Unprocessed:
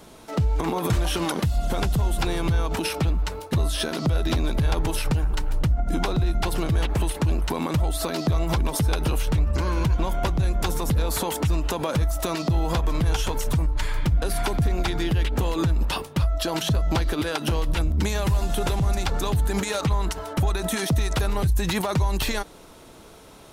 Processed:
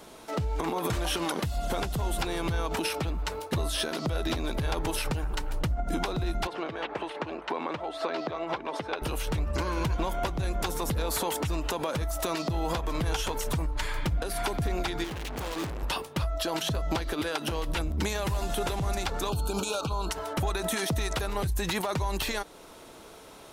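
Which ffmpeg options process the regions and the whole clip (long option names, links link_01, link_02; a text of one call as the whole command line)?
ffmpeg -i in.wav -filter_complex "[0:a]asettb=1/sr,asplit=3[link_01][link_02][link_03];[link_01]atrim=end=6.474[link_04];[link_02]atrim=start=6.47:end=9.02,asetpts=PTS-STARTPTS,afade=type=in:duration=0.004:curve=qsin,afade=type=out:start_time=2.546:duration=0.004:curve=qsin,highpass=140,lowpass=5600,bass=frequency=250:gain=-12,treble=frequency=4000:gain=-13[link_05];[link_03]atrim=start=9.016[link_06];[link_04][link_05]acrossfade=duration=0.004:curve1=hsin:curve2=qsin[link_07];[link_07][link_06]acrossfade=duration=0.004:curve1=qsin:curve2=hsin,asettb=1/sr,asplit=3[link_08][link_09][link_10];[link_08]atrim=end=15.044[link_11];[link_09]atrim=start=15.04:end=15.83,asetpts=PTS-STARTPTS,afade=type=in:duration=0.004:curve=qsin,afade=type=out:start_time=0.786:duration=0.004:curve=qsin,acrusher=bits=3:mix=0:aa=0.5,volume=26.5dB,asoftclip=hard,volume=-26.5dB[link_12];[link_10]atrim=start=15.826[link_13];[link_11][link_12]acrossfade=duration=0.004:curve1=hsin:curve2=qsin[link_14];[link_14][link_13]acrossfade=duration=0.004:curve1=qsin:curve2=hsin,asettb=1/sr,asplit=3[link_15][link_16][link_17];[link_15]atrim=end=19.294[link_18];[link_16]atrim=start=19.29:end=20.1,asetpts=PTS-STARTPTS,afade=type=in:duration=0.004:curve=qsin,afade=type=out:start_time=0.806:duration=0.004:curve=qsin,aeval=exprs='val(0)+0.00501*sin(2*PI*4300*n/s)':channel_layout=same,asuperstop=centerf=1900:order=12:qfactor=2.3[link_19];[link_17]atrim=start=20.096[link_20];[link_18][link_19]acrossfade=duration=0.004:curve1=hsin:curve2=qsin[link_21];[link_21][link_20]acrossfade=duration=0.004:curve1=qsin:curve2=hsin,bass=frequency=250:gain=-7,treble=frequency=4000:gain=-1,alimiter=limit=-19dB:level=0:latency=1:release=318" out.wav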